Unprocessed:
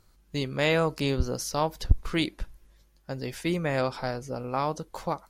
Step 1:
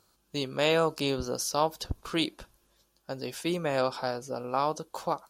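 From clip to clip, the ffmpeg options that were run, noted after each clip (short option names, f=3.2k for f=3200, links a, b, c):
-af "highpass=f=370:p=1,equalizer=f=2k:w=3.7:g=-11,volume=2dB"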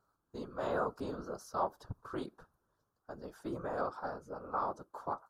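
-af "highshelf=f=1.8k:t=q:w=3:g=-10.5,afftfilt=real='hypot(re,im)*cos(2*PI*random(0))':imag='hypot(re,im)*sin(2*PI*random(1))':win_size=512:overlap=0.75,volume=-4.5dB"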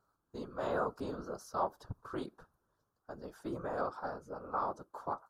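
-af anull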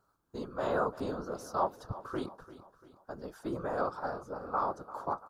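-af "aecho=1:1:343|686|1029|1372:0.158|0.0745|0.035|0.0165,volume=3.5dB"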